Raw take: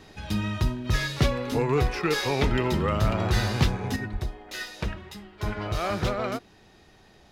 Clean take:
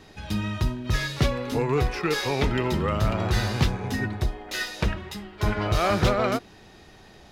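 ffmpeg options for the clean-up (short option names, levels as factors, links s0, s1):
-filter_complex "[0:a]asplit=3[s0][s1][s2];[s0]afade=t=out:st=2.5:d=0.02[s3];[s1]highpass=f=140:w=0.5412,highpass=f=140:w=1.3066,afade=t=in:st=2.5:d=0.02,afade=t=out:st=2.62:d=0.02[s4];[s2]afade=t=in:st=2.62:d=0.02[s5];[s3][s4][s5]amix=inputs=3:normalize=0,asplit=3[s6][s7][s8];[s6]afade=t=out:st=4.12:d=0.02[s9];[s7]highpass=f=140:w=0.5412,highpass=f=140:w=1.3066,afade=t=in:st=4.12:d=0.02,afade=t=out:st=4.24:d=0.02[s10];[s8]afade=t=in:st=4.24:d=0.02[s11];[s9][s10][s11]amix=inputs=3:normalize=0,asetnsamples=n=441:p=0,asendcmd='3.96 volume volume 5.5dB',volume=1"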